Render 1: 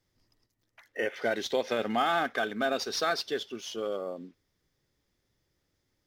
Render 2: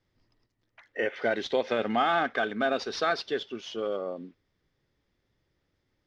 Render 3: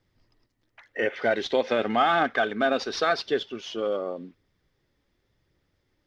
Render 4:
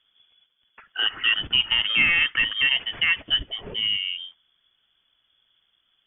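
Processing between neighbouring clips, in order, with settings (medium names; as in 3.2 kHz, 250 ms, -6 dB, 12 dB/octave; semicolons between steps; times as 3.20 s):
low-pass 3.8 kHz 12 dB/octave; trim +2 dB
phaser 0.9 Hz, delay 4.1 ms, feedback 23%; trim +3 dB
frequency inversion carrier 3.4 kHz; dynamic bell 770 Hz, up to -5 dB, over -39 dBFS, Q 0.71; trim +3 dB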